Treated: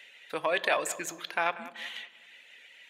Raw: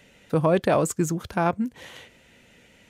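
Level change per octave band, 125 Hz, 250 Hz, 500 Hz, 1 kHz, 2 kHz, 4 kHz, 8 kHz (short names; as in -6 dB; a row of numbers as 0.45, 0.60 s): -29.0, -19.5, -9.0, -5.0, +3.5, +5.0, -3.5 dB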